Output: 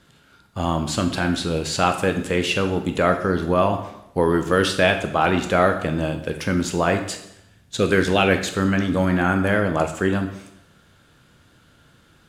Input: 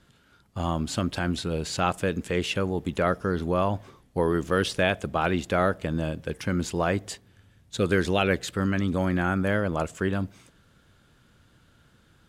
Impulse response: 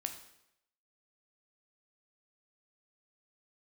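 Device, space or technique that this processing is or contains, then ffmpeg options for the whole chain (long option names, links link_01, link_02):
bathroom: -filter_complex "[0:a]lowshelf=frequency=120:gain=-6[link_01];[1:a]atrim=start_sample=2205[link_02];[link_01][link_02]afir=irnorm=-1:irlink=0,volume=7dB"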